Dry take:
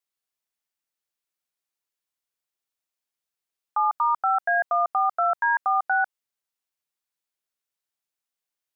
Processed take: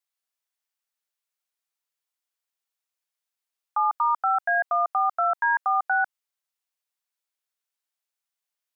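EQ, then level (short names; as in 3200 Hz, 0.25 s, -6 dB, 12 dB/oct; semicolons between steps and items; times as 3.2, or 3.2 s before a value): HPF 560 Hz 12 dB/oct; 0.0 dB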